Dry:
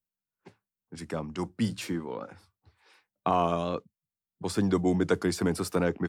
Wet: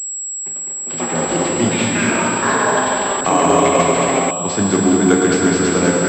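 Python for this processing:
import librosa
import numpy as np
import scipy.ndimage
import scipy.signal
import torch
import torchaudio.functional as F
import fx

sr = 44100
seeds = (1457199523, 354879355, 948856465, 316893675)

y = scipy.signal.sosfilt(scipy.signal.butter(2, 110.0, 'highpass', fs=sr, output='sos'), x)
y = fx.high_shelf(y, sr, hz=3000.0, db=11.0)
y = fx.echo_feedback(y, sr, ms=205, feedback_pct=58, wet_db=-5.0)
y = fx.rev_plate(y, sr, seeds[0], rt60_s=3.6, hf_ratio=0.9, predelay_ms=0, drr_db=-2.0)
y = fx.echo_pitch(y, sr, ms=249, semitones=7, count=3, db_per_echo=-3.0)
y = fx.pwm(y, sr, carrier_hz=7700.0)
y = y * librosa.db_to_amplitude(7.0)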